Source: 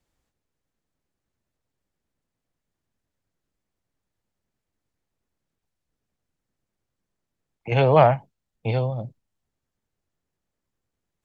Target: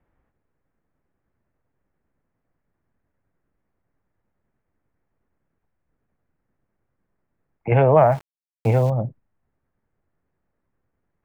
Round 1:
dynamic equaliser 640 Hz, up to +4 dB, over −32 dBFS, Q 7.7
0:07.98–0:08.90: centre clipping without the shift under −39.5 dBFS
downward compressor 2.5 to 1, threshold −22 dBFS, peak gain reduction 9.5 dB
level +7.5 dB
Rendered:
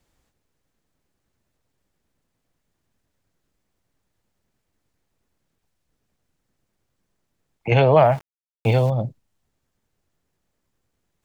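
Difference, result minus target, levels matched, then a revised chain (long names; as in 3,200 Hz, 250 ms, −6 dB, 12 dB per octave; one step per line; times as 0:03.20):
2,000 Hz band +4.0 dB
dynamic equaliser 640 Hz, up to +4 dB, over −32 dBFS, Q 7.7
low-pass filter 2,000 Hz 24 dB per octave
0:07.98–0:08.90: centre clipping without the shift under −39.5 dBFS
downward compressor 2.5 to 1, threshold −22 dBFS, peak gain reduction 9.5 dB
level +7.5 dB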